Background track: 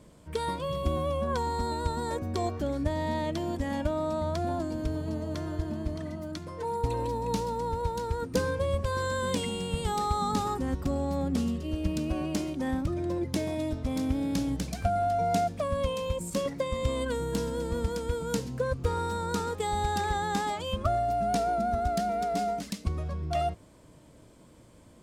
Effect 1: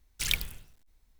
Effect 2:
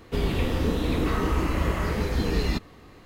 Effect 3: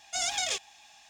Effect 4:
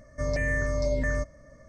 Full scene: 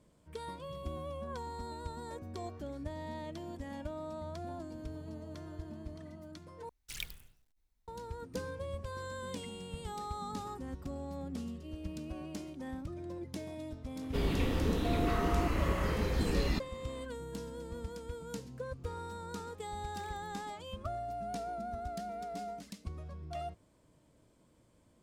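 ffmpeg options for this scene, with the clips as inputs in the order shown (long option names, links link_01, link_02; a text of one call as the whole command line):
ffmpeg -i bed.wav -i cue0.wav -i cue1.wav -filter_complex "[1:a]asplit=2[link_01][link_02];[0:a]volume=-12dB[link_03];[link_02]acompressor=threshold=-43dB:ratio=6:attack=3.2:release=140:knee=1:detection=peak[link_04];[link_03]asplit=2[link_05][link_06];[link_05]atrim=end=6.694[link_07];[link_01]atrim=end=1.19,asetpts=PTS-STARTPTS,volume=-13dB[link_08];[link_06]atrim=start=7.876[link_09];[2:a]atrim=end=3.05,asetpts=PTS-STARTPTS,volume=-6.5dB,afade=type=in:duration=0.004:curve=hsin,afade=type=out:start_time=3.046:duration=0.004:curve=hsin,adelay=14010[link_10];[link_04]atrim=end=1.19,asetpts=PTS-STARTPTS,volume=-17dB,afade=type=in:duration=0.004:curve=hsin,afade=type=out:start_time=1.186:duration=0.004:curve=hsin,adelay=19750[link_11];[link_07][link_08]acrossfade=duration=0.004:curve1=hsin:curve2=hsin[link_12];[link_12][link_09]acrossfade=duration=0.004:curve1=hsin:curve2=hsin[link_13];[link_13][link_10][link_11]amix=inputs=3:normalize=0" out.wav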